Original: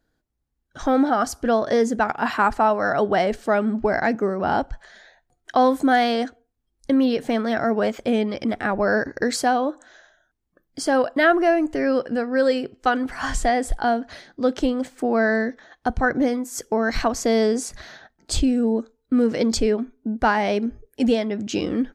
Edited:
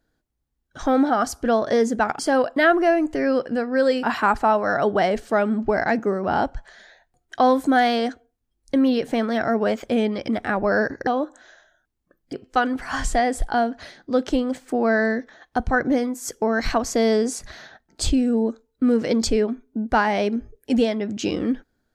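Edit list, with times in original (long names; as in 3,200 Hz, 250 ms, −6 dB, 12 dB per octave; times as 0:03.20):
0:09.23–0:09.53: remove
0:10.79–0:12.63: move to 0:02.19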